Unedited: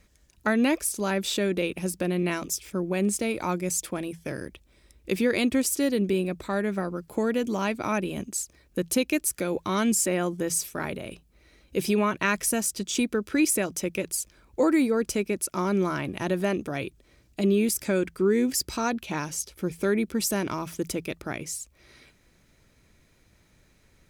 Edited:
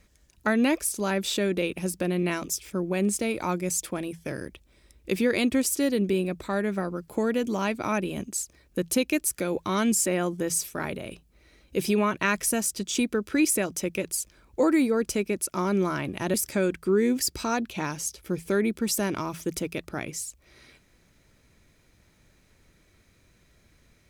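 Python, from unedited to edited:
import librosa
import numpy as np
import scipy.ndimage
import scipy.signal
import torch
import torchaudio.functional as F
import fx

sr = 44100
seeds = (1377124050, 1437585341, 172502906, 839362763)

y = fx.edit(x, sr, fx.cut(start_s=16.34, length_s=1.33), tone=tone)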